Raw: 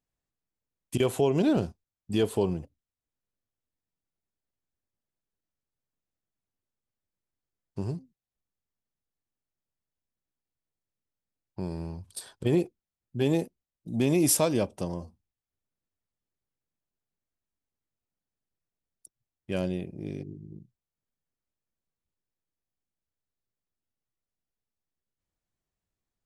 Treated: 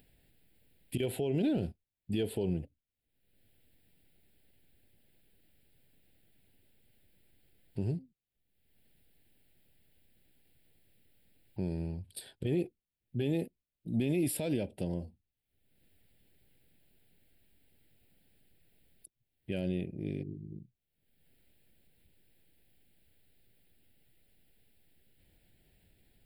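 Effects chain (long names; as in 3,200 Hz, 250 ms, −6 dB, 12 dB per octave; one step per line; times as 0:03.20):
brickwall limiter −21.5 dBFS, peak gain reduction 10.5 dB
upward compression, threshold −46 dBFS
phaser with its sweep stopped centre 2,700 Hz, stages 4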